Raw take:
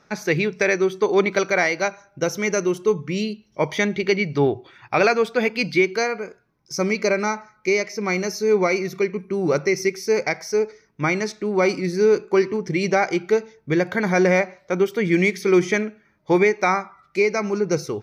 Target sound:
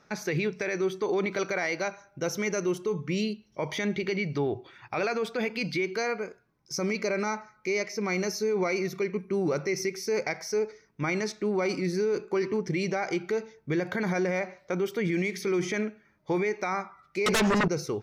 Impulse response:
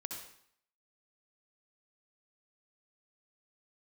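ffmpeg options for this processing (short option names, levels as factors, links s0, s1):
-filter_complex "[0:a]asettb=1/sr,asplit=3[s0][s1][s2];[s0]atrim=end=17.264[s3];[s1]atrim=start=17.26:end=17.68,asetpts=PTS-STARTPTS,afade=t=in:d=0.004:c=qsin,afade=t=out:st=0.416:d=0.004:c=qsin,aeval=exprs='0.282*sin(PI/2*4.47*val(0)/0.282)':c=same[s4];[s2]atrim=start=17.676[s5];[s3][s4]acrossfade=d=0.004:c1=hsin:c2=qsin[s6];[s6][s5]acrossfade=d=0.004:c1=qsin:c2=hsin,alimiter=limit=0.15:level=0:latency=1:release=35,volume=0.668"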